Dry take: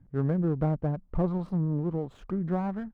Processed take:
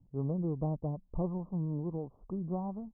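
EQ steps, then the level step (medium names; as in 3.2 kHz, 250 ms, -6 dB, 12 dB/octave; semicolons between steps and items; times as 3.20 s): steep low-pass 1.1 kHz 72 dB/octave; -6.5 dB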